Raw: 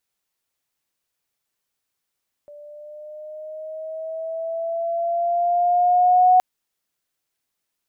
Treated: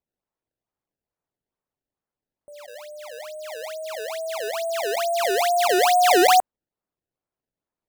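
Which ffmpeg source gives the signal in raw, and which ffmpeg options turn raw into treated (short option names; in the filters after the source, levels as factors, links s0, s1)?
-f lavfi -i "aevalsrc='pow(10,(-10+29*(t/3.92-1))/20)*sin(2*PI*585*3.92/(4*log(2)/12)*(exp(4*log(2)/12*t/3.92)-1))':d=3.92:s=44100"
-af "lowpass=1100,acrusher=samples=23:mix=1:aa=0.000001:lfo=1:lforange=36.8:lforate=2.3"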